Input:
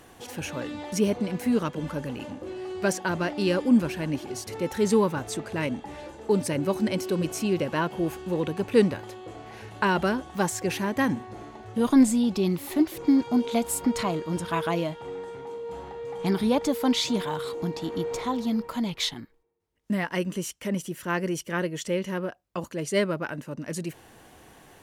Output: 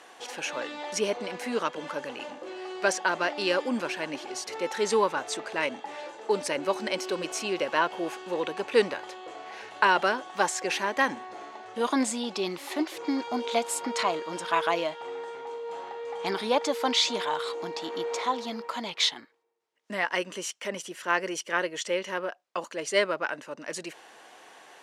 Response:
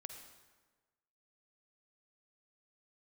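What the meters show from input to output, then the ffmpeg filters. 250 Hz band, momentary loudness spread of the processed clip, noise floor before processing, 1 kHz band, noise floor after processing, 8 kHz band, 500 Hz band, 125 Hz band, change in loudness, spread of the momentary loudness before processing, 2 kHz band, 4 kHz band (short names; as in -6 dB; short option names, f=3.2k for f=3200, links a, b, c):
-10.0 dB, 12 LU, -52 dBFS, +3.5 dB, -52 dBFS, +0.5 dB, -1.0 dB, -16.5 dB, -2.0 dB, 14 LU, +4.0 dB, +3.5 dB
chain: -af "highpass=570,lowpass=7k,volume=4dB"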